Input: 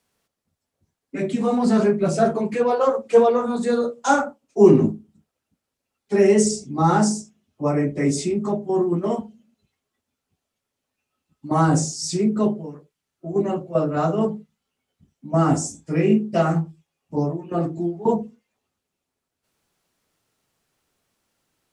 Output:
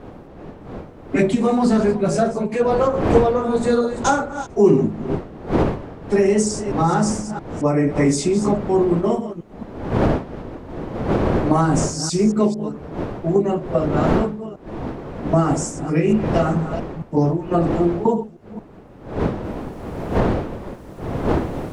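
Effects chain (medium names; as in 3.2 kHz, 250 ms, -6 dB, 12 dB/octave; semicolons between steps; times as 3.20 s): chunks repeated in reverse 224 ms, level -12 dB; wind noise 450 Hz -29 dBFS; recorder AGC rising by 10 dB/s; trim -1.5 dB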